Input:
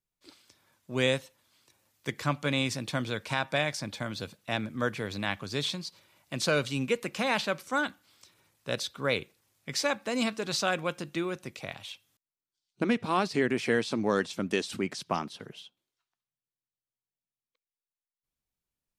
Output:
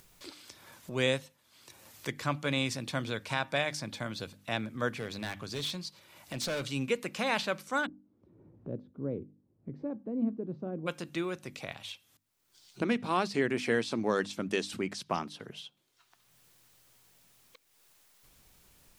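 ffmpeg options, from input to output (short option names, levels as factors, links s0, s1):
-filter_complex "[0:a]asettb=1/sr,asplit=3[s0][s1][s2];[s0]atrim=end=4.994[s3];[s1]atrim=start=4.99:end=6.63,asetpts=PTS-STARTPTS,afade=t=in:d=0.004:c=qsin,afade=t=out:st=1.636:d=0.004:c=qsin,volume=25.1,asoftclip=hard,volume=0.0398[s4];[s2]atrim=start=6.626[s5];[s3][s4]acrossfade=d=0.004:c1=hsin:c2=qsin[s6];[s6][s5]acrossfade=d=0.004:c1=qsin:c2=hsin,asplit=3[s7][s8][s9];[s7]afade=t=out:st=7.85:d=0.02[s10];[s8]lowpass=f=310:t=q:w=1.5,afade=t=in:st=7.85:d=0.02,afade=t=out:st=10.86:d=0.02[s11];[s9]afade=t=in:st=10.86:d=0.02[s12];[s10][s11][s12]amix=inputs=3:normalize=0,bandreject=f=50:t=h:w=6,bandreject=f=100:t=h:w=6,bandreject=f=150:t=h:w=6,bandreject=f=200:t=h:w=6,bandreject=f=250:t=h:w=6,bandreject=f=300:t=h:w=6,acompressor=mode=upward:threshold=0.0178:ratio=2.5,volume=0.794"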